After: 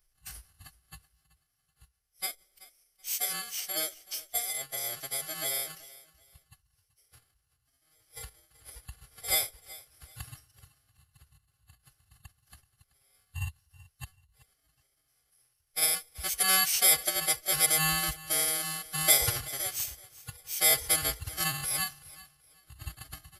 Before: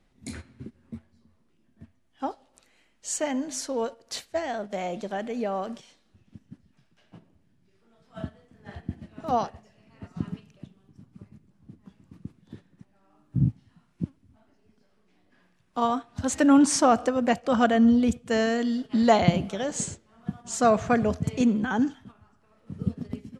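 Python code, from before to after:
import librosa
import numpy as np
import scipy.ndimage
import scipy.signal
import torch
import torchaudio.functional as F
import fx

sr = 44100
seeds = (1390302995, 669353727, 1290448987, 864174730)

y = fx.bit_reversed(x, sr, seeds[0], block=32)
y = fx.tone_stack(y, sr, knobs='10-0-10')
y = fx.pitch_keep_formants(y, sr, semitones=-6.5)
y = fx.echo_feedback(y, sr, ms=380, feedback_pct=26, wet_db=-19.5)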